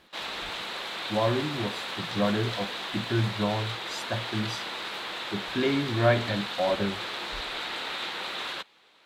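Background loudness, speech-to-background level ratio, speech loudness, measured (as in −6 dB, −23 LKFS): −33.0 LKFS, 3.5 dB, −29.5 LKFS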